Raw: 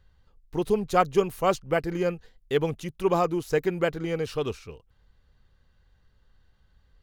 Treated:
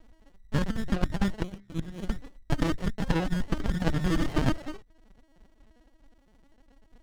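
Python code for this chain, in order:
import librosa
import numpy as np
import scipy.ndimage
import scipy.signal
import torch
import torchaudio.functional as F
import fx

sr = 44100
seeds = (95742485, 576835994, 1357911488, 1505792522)

y = fx.band_invert(x, sr, width_hz=2000)
y = fx.lpc_vocoder(y, sr, seeds[0], excitation='pitch_kept', order=10)
y = fx.hum_notches(y, sr, base_hz=50, count=6)
y = fx.over_compress(y, sr, threshold_db=-26.0, ratio=-0.5)
y = fx.spec_box(y, sr, start_s=1.42, length_s=0.68, low_hz=350.0, high_hz=2500.0, gain_db=-28)
y = fx.running_max(y, sr, window=33)
y = y * 10.0 ** (6.5 / 20.0)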